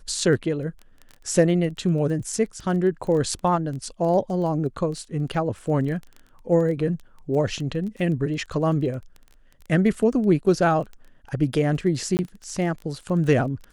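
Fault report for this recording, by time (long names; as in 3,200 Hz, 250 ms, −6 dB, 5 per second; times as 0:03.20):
surface crackle 14 per second −31 dBFS
0:12.17–0:12.19: drop-out 19 ms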